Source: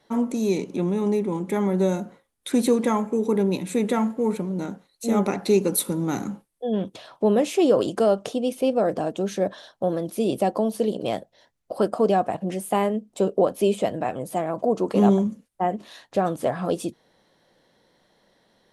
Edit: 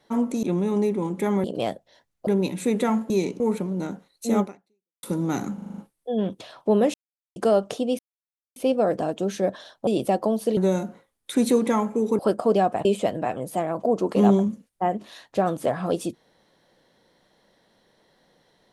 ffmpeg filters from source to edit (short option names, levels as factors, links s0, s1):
-filter_complex "[0:a]asplit=20[s0][s1][s2][s3][s4][s5][s6][s7][s8][s9][s10][s11][s12][s13][s14][s15][s16][s17][s18][s19];[s0]atrim=end=0.432[s20];[s1]atrim=start=0.728:end=1.742[s21];[s2]atrim=start=10.898:end=11.732[s22];[s3]atrim=start=3.358:end=4.192[s23];[s4]atrim=start=0.428:end=0.732[s24];[s5]atrim=start=4.188:end=5.82,asetpts=PTS-STARTPTS,afade=t=out:st=1.002:d=0.63:c=exp[s25];[s6]atrim=start=5.82:end=6.372,asetpts=PTS-STARTPTS,afade=t=in:d=0.004:c=hsin[s26];[s7]atrim=start=6.328:end=6.372[s27];[s8]atrim=start=6.328:end=6.372[s28];[s9]atrim=start=6.328:end=6.372[s29];[s10]atrim=start=6.328:end=6.372[s30];[s11]atrim=start=6.328:end=6.372[s31];[s12]atrim=start=6.328:end=7.49,asetpts=PTS-STARTPTS,afade=t=out:st=1.158:d=0.004:c=hsin[s32];[s13]atrim=start=7.49:end=7.91,asetpts=PTS-STARTPTS,volume=0[s33];[s14]atrim=start=7.91:end=8.54,asetpts=PTS-STARTPTS,afade=t=in:d=0.004:c=hsin,afade=t=out:st=0.626:d=0.004:c=hsin,apad=pad_dur=0.57[s34];[s15]atrim=start=8.54:end=9.852,asetpts=PTS-STARTPTS,afade=t=in:d=0.004:c=hsin[s35];[s16]atrim=start=10.198:end=10.902[s36];[s17]atrim=start=1.738:end=3.362[s37];[s18]atrim=start=11.728:end=12.392[s38];[s19]atrim=start=13.638[s39];[s20][s21]acrossfade=d=0.004:c1=hsin:c2=hsin[s40];[s40][s22]acrossfade=d=0.004:c1=hsin:c2=hsin[s41];[s41][s23]acrossfade=d=0.004:c1=hsin:c2=hsin[s42];[s42][s24]acrossfade=d=0.004:c1=hsin:c2=hsin[s43];[s25][s26]concat=n=2:v=0:a=1[s44];[s43][s44]acrossfade=d=0.004:c1=hsin:c2=hsin[s45];[s45][s27]acrossfade=d=0.004:c1=hsin:c2=hsin[s46];[s46][s28]acrossfade=d=0.004:c1=hsin:c2=hsin[s47];[s47][s29]acrossfade=d=0.004:c1=hsin:c2=hsin[s48];[s48][s30]acrossfade=d=0.004:c1=hsin:c2=hsin[s49];[s49][s31]acrossfade=d=0.004:c1=hsin:c2=hsin[s50];[s32][s33][s34][s35]concat=n=4:v=0:a=1[s51];[s50][s51]acrossfade=d=0.004:c1=hsin:c2=hsin[s52];[s52][s36]acrossfade=d=0.004:c1=hsin:c2=hsin[s53];[s53][s37]acrossfade=d=0.004:c1=hsin:c2=hsin[s54];[s54][s38]acrossfade=d=0.004:c1=hsin:c2=hsin[s55];[s55][s39]acrossfade=d=0.004:c1=hsin:c2=hsin"